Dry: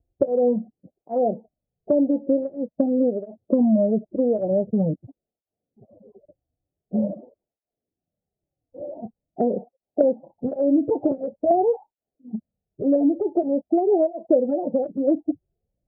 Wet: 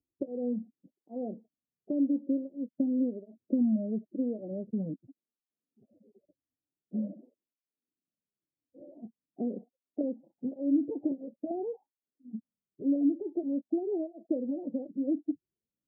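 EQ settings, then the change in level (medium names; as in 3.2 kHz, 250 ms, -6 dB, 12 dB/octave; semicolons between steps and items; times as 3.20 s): band-pass filter 270 Hz, Q 2.4; distance through air 440 m; -5.5 dB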